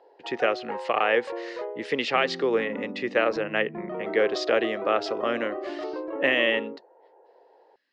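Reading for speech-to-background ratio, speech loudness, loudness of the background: 9.0 dB, -26.0 LUFS, -35.0 LUFS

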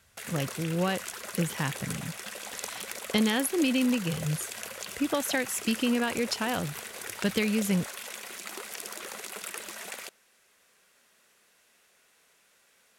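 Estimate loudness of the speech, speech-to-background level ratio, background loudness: -29.5 LUFS, 8.5 dB, -38.0 LUFS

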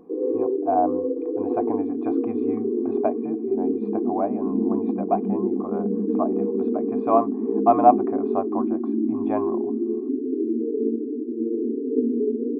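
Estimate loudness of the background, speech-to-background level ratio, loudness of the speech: -25.0 LUFS, -1.0 dB, -26.0 LUFS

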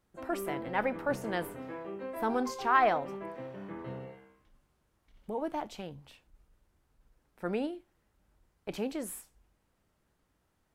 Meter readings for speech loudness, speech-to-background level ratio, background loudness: -33.5 LUFS, 8.5 dB, -42.0 LUFS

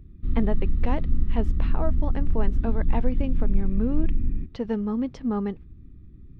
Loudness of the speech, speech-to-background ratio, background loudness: -30.5 LUFS, -1.5 dB, -29.0 LUFS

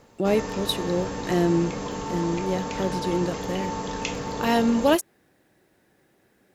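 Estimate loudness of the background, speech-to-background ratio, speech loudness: -31.5 LUFS, 6.0 dB, -25.5 LUFS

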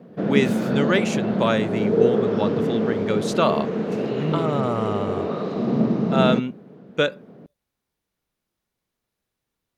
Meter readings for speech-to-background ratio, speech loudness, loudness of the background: -1.5 dB, -25.0 LUFS, -23.5 LUFS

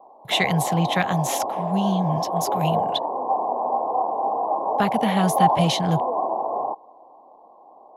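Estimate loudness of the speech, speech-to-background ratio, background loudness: -24.5 LUFS, 0.0 dB, -24.5 LUFS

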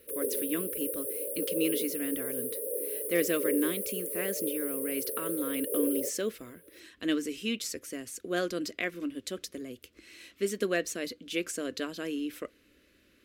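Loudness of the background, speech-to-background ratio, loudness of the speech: -32.5 LUFS, -2.0 dB, -34.5 LUFS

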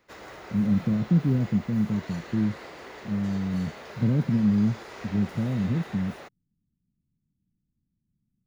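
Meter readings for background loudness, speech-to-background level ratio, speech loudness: -42.5 LUFS, 16.0 dB, -26.5 LUFS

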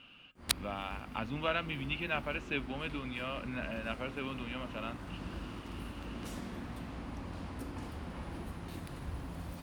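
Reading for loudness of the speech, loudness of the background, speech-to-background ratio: -38.5 LUFS, -43.5 LUFS, 5.0 dB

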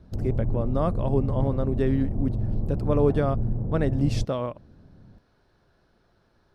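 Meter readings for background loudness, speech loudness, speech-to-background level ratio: -30.0 LUFS, -27.5 LUFS, 2.5 dB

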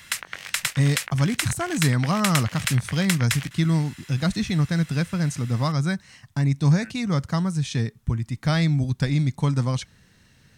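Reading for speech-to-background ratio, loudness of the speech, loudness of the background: 4.5 dB, -24.0 LUFS, -28.5 LUFS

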